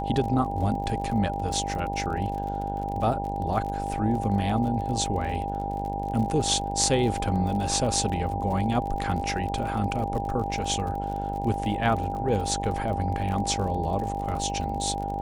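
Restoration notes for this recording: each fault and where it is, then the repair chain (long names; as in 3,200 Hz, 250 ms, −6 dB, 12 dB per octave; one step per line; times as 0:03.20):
mains buzz 50 Hz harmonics 19 −33 dBFS
surface crackle 42 per second −33 dBFS
whistle 800 Hz −31 dBFS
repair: click removal
hum removal 50 Hz, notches 19
notch filter 800 Hz, Q 30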